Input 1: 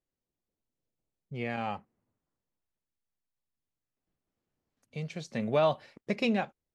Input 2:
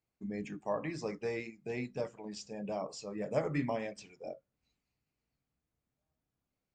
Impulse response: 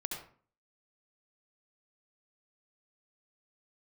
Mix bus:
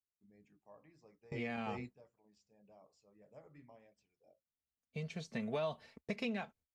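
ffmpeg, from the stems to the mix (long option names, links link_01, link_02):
-filter_complex "[0:a]agate=range=-21dB:threshold=-56dB:ratio=16:detection=peak,aecho=1:1:4.5:0.5,volume=-5.5dB,asplit=2[link_01][link_02];[1:a]adynamicequalizer=threshold=0.00501:dfrequency=780:dqfactor=0.76:tfrequency=780:tqfactor=0.76:attack=5:release=100:ratio=0.375:range=2:mode=boostabove:tftype=bell,volume=-8.5dB[link_03];[link_02]apad=whole_len=297649[link_04];[link_03][link_04]sidechaingate=range=-20dB:threshold=-56dB:ratio=16:detection=peak[link_05];[link_01][link_05]amix=inputs=2:normalize=0,equalizer=frequency=74:width_type=o:width=1.2:gain=10.5,acrossover=split=640|3300[link_06][link_07][link_08];[link_06]acompressor=threshold=-39dB:ratio=4[link_09];[link_07]acompressor=threshold=-42dB:ratio=4[link_10];[link_08]acompressor=threshold=-53dB:ratio=4[link_11];[link_09][link_10][link_11]amix=inputs=3:normalize=0"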